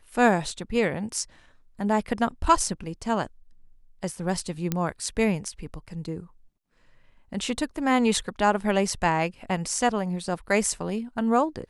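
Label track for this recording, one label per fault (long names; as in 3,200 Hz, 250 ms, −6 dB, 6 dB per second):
4.720000	4.720000	click −11 dBFS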